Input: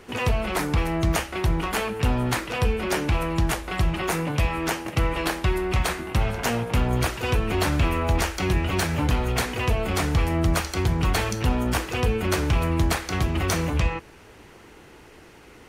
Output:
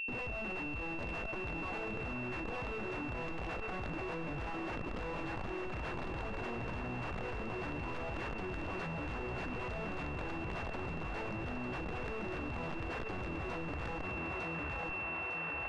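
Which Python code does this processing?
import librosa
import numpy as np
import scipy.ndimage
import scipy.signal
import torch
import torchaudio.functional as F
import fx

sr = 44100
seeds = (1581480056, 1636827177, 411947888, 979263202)

p1 = fx.dereverb_blind(x, sr, rt60_s=0.98)
p2 = fx.highpass(p1, sr, hz=190.0, slope=6)
p3 = fx.high_shelf(p2, sr, hz=3100.0, db=-8.5)
p4 = fx.quant_float(p3, sr, bits=2)
p5 = fx.schmitt(p4, sr, flips_db=-39.0)
p6 = fx.echo_feedback(p5, sr, ms=904, feedback_pct=32, wet_db=-23.0)
p7 = (np.mod(10.0 ** (37.5 / 20.0) * p6 + 1.0, 2.0) - 1.0) / 10.0 ** (37.5 / 20.0)
p8 = p7 + 10.0 ** (-40.0 / 20.0) * np.sin(2.0 * np.pi * 2700.0 * np.arange(len(p7)) / sr)
p9 = fx.spacing_loss(p8, sr, db_at_10k=27)
p10 = p9 + fx.echo_wet_bandpass(p9, sr, ms=823, feedback_pct=73, hz=1300.0, wet_db=-7.5, dry=0)
p11 = fx.env_flatten(p10, sr, amount_pct=100)
y = F.gain(torch.from_numpy(p11), 2.0).numpy()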